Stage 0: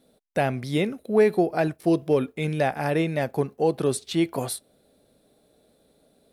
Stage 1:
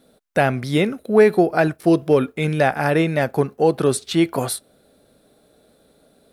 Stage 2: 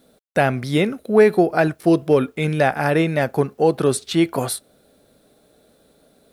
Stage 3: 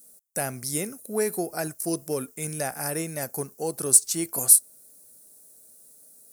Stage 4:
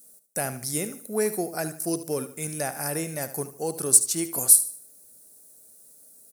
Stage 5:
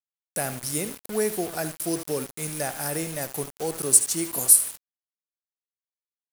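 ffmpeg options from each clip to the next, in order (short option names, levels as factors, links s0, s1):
-af "equalizer=f=1400:w=2.4:g=5.5,volume=1.88"
-af "acrusher=bits=10:mix=0:aa=0.000001"
-af "aexciter=amount=14.6:drive=7.5:freq=5400,volume=0.211"
-af "aecho=1:1:75|150|225|300:0.224|0.0806|0.029|0.0104"
-af "acrusher=bits=5:mix=0:aa=0.000001"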